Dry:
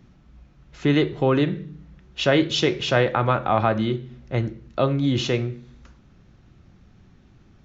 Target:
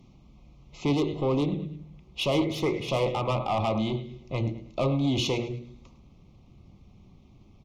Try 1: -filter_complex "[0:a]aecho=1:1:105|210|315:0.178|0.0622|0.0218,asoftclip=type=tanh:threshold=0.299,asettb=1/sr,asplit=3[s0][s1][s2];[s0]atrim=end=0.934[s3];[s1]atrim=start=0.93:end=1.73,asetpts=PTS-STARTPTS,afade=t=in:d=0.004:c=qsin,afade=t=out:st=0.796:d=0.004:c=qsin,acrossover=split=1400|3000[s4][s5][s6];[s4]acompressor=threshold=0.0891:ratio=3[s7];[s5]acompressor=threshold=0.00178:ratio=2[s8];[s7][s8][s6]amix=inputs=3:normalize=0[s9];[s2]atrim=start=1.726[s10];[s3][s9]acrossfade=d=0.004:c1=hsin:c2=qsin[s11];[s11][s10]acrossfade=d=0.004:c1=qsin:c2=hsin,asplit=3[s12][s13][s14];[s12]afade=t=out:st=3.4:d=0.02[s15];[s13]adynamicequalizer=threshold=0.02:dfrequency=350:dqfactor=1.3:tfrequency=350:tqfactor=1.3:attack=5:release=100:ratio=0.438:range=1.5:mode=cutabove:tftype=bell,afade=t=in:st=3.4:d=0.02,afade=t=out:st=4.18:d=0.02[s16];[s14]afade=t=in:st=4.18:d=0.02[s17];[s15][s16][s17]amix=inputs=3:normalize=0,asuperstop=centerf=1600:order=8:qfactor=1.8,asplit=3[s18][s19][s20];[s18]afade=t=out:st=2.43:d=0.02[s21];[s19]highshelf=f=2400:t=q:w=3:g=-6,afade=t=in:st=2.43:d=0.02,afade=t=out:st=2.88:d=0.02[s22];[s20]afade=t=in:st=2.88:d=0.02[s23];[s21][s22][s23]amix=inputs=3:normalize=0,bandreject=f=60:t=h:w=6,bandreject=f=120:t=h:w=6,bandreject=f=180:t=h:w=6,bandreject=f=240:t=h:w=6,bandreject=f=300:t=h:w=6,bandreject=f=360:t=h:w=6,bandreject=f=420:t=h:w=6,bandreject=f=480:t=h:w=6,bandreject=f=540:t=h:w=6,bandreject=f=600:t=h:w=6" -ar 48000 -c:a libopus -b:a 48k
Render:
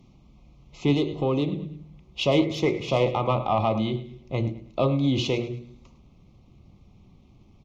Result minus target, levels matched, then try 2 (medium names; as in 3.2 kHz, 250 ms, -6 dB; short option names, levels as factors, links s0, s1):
saturation: distortion -9 dB
-filter_complex "[0:a]aecho=1:1:105|210|315:0.178|0.0622|0.0218,asoftclip=type=tanh:threshold=0.106,asettb=1/sr,asplit=3[s0][s1][s2];[s0]atrim=end=0.934[s3];[s1]atrim=start=0.93:end=1.73,asetpts=PTS-STARTPTS,afade=t=in:d=0.004:c=qsin,afade=t=out:st=0.796:d=0.004:c=qsin,acrossover=split=1400|3000[s4][s5][s6];[s4]acompressor=threshold=0.0891:ratio=3[s7];[s5]acompressor=threshold=0.00178:ratio=2[s8];[s7][s8][s6]amix=inputs=3:normalize=0[s9];[s2]atrim=start=1.726[s10];[s3][s9]acrossfade=d=0.004:c1=hsin:c2=qsin[s11];[s11][s10]acrossfade=d=0.004:c1=qsin:c2=hsin,asplit=3[s12][s13][s14];[s12]afade=t=out:st=3.4:d=0.02[s15];[s13]adynamicequalizer=threshold=0.02:dfrequency=350:dqfactor=1.3:tfrequency=350:tqfactor=1.3:attack=5:release=100:ratio=0.438:range=1.5:mode=cutabove:tftype=bell,afade=t=in:st=3.4:d=0.02,afade=t=out:st=4.18:d=0.02[s16];[s14]afade=t=in:st=4.18:d=0.02[s17];[s15][s16][s17]amix=inputs=3:normalize=0,asuperstop=centerf=1600:order=8:qfactor=1.8,asplit=3[s18][s19][s20];[s18]afade=t=out:st=2.43:d=0.02[s21];[s19]highshelf=f=2400:t=q:w=3:g=-6,afade=t=in:st=2.43:d=0.02,afade=t=out:st=2.88:d=0.02[s22];[s20]afade=t=in:st=2.88:d=0.02[s23];[s21][s22][s23]amix=inputs=3:normalize=0,bandreject=f=60:t=h:w=6,bandreject=f=120:t=h:w=6,bandreject=f=180:t=h:w=6,bandreject=f=240:t=h:w=6,bandreject=f=300:t=h:w=6,bandreject=f=360:t=h:w=6,bandreject=f=420:t=h:w=6,bandreject=f=480:t=h:w=6,bandreject=f=540:t=h:w=6,bandreject=f=600:t=h:w=6" -ar 48000 -c:a libopus -b:a 48k